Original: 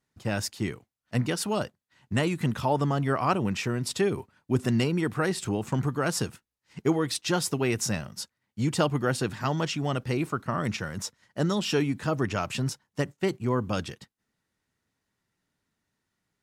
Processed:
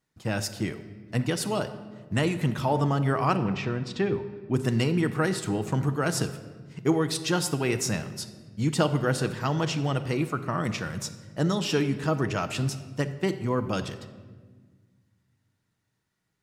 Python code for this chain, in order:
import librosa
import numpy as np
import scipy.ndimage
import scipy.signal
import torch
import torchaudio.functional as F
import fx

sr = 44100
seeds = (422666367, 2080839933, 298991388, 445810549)

y = fx.air_absorb(x, sr, metres=170.0, at=(3.36, 4.54))
y = fx.room_shoebox(y, sr, seeds[0], volume_m3=1500.0, walls='mixed', distance_m=0.61)